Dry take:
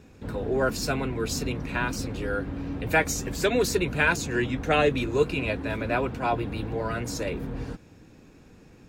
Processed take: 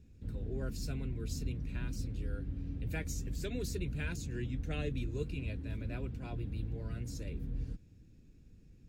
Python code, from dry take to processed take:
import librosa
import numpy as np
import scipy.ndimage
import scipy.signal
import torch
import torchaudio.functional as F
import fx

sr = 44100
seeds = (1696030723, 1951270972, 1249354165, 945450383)

y = fx.tone_stack(x, sr, knobs='10-0-1')
y = y * librosa.db_to_amplitude(6.0)